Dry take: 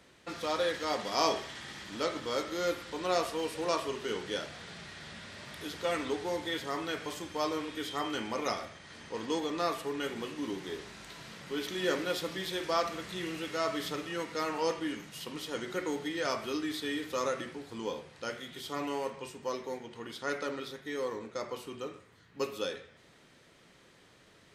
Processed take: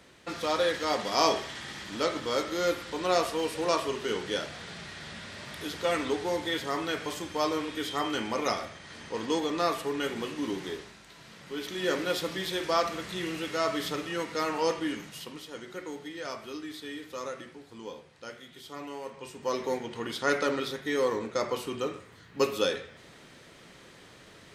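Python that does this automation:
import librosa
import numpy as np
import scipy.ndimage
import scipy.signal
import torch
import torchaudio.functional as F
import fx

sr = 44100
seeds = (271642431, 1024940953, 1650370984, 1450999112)

y = fx.gain(x, sr, db=fx.line((10.67, 4.0), (11.03, -5.0), (12.11, 3.5), (15.07, 3.5), (15.48, -5.0), (19.01, -5.0), (19.65, 8.0)))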